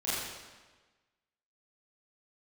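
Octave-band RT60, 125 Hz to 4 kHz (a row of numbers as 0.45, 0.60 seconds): 1.3, 1.3, 1.3, 1.3, 1.3, 1.1 seconds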